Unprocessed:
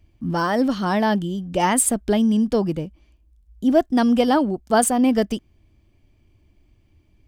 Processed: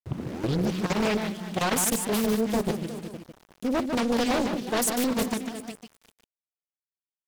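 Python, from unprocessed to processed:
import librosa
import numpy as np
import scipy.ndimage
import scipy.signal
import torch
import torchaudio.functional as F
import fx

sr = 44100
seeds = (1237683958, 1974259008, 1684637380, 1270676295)

y = fx.tape_start_head(x, sr, length_s=0.87)
y = scipy.signal.sosfilt(scipy.signal.butter(4, 100.0, 'highpass', fs=sr, output='sos'), y)
y = fx.high_shelf(y, sr, hz=2900.0, db=10.0)
y = fx.hum_notches(y, sr, base_hz=50, count=9)
y = 10.0 ** (-16.0 / 20.0) * np.tanh(y / 10.0 ** (-16.0 / 20.0))
y = fx.echo_feedback(y, sr, ms=364, feedback_pct=30, wet_db=-11.0)
y = fx.dynamic_eq(y, sr, hz=720.0, q=0.98, threshold_db=-34.0, ratio=4.0, max_db=-5)
y = fx.level_steps(y, sr, step_db=12)
y = np.where(np.abs(y) >= 10.0 ** (-42.0 / 20.0), y, 0.0)
y = y + 10.0 ** (-6.0 / 20.0) * np.pad(y, (int(149 * sr / 1000.0), 0))[:len(y)]
y = fx.doppler_dist(y, sr, depth_ms=0.97)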